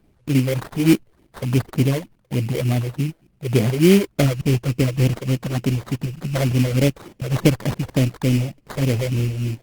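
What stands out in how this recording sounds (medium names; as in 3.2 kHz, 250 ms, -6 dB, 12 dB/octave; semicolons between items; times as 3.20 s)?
phasing stages 8, 3.4 Hz, lowest notch 210–2700 Hz; aliases and images of a low sample rate 2.7 kHz, jitter 20%; Opus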